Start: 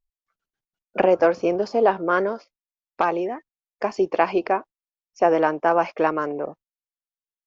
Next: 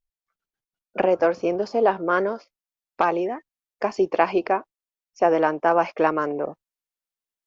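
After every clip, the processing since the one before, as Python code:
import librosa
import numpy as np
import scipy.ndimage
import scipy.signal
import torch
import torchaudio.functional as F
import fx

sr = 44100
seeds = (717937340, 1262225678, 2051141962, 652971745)

y = fx.rider(x, sr, range_db=3, speed_s=2.0)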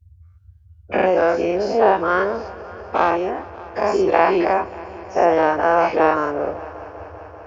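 y = fx.spec_dilate(x, sr, span_ms=120)
y = fx.echo_heads(y, sr, ms=195, heads='all three', feedback_pct=67, wet_db=-24)
y = fx.dmg_noise_band(y, sr, seeds[0], low_hz=62.0, high_hz=100.0, level_db=-45.0)
y = F.gain(torch.from_numpy(y), -1.0).numpy()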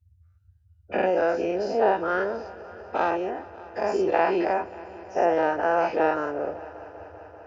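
y = fx.notch_comb(x, sr, f0_hz=1100.0)
y = F.gain(torch.from_numpy(y), -6.0).numpy()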